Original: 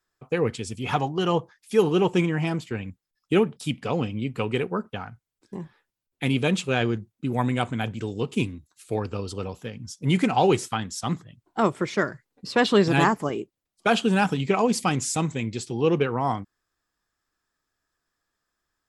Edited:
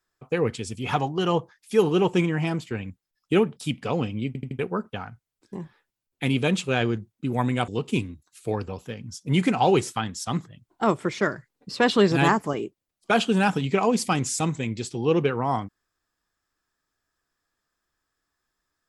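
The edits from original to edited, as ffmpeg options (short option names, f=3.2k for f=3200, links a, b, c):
-filter_complex "[0:a]asplit=7[a][b][c][d][e][f][g];[a]atrim=end=4.352[h];[b]atrim=start=4.268:end=4.352[i];[c]atrim=start=4.268:end=4.352[j];[d]atrim=start=4.268:end=4.352[k];[e]atrim=start=4.588:end=7.682[l];[f]atrim=start=8.118:end=9.122[m];[g]atrim=start=9.438[n];[h][i]acrossfade=d=0.004:c1=hsin:c2=hsin[o];[o][j]acrossfade=d=0.004:c1=hsin:c2=hsin[p];[p][k]acrossfade=d=0.004:c1=hsin:c2=hsin[q];[q][l]acrossfade=d=0.004:c1=hsin:c2=hsin[r];[r][m]acrossfade=d=0.004:c1=hsin:c2=hsin[s];[s][n]acrossfade=d=0.004:c1=hsin:c2=hsin"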